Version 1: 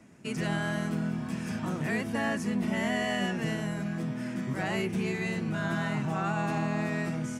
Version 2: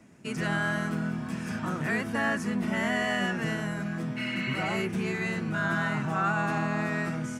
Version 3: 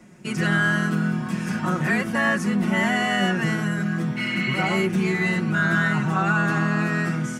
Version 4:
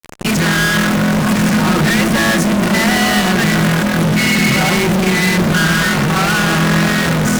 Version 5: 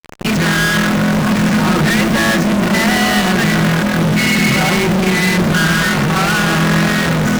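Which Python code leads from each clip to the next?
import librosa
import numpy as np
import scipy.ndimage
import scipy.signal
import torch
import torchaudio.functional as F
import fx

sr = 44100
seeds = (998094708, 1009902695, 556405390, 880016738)

y1 = fx.spec_repair(x, sr, seeds[0], start_s=4.2, length_s=0.55, low_hz=1500.0, high_hz=4500.0, source='after')
y1 = fx.dynamic_eq(y1, sr, hz=1400.0, q=1.8, threshold_db=-50.0, ratio=4.0, max_db=8)
y2 = y1 + 0.61 * np.pad(y1, (int(5.5 * sr / 1000.0), 0))[:len(y1)]
y2 = y2 * 10.0 ** (5.0 / 20.0)
y3 = fx.fuzz(y2, sr, gain_db=48.0, gate_db=-42.0)
y3 = fx.echo_wet_lowpass(y3, sr, ms=148, feedback_pct=83, hz=610.0, wet_db=-10.0)
y4 = scipy.signal.medfilt(y3, 5)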